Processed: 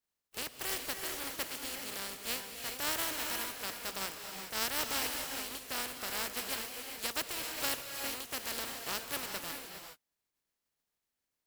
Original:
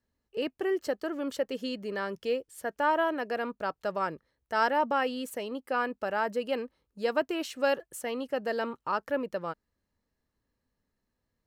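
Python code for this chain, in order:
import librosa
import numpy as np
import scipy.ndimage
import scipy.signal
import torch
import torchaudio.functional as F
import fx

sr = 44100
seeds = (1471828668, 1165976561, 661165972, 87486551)

y = fx.spec_flatten(x, sr, power=0.2)
y = fx.rev_gated(y, sr, seeds[0], gate_ms=440, shape='rising', drr_db=3.5)
y = y * 10.0 ** (-8.0 / 20.0)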